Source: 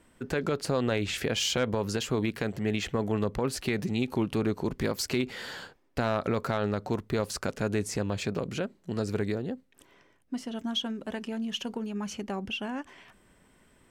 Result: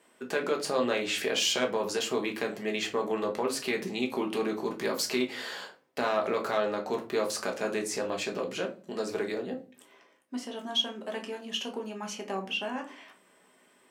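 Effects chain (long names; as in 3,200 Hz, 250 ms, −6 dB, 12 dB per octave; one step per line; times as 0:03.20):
high-pass filter 380 Hz 12 dB per octave
notch filter 1,400 Hz, Q 22
rectangular room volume 200 cubic metres, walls furnished, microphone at 1.3 metres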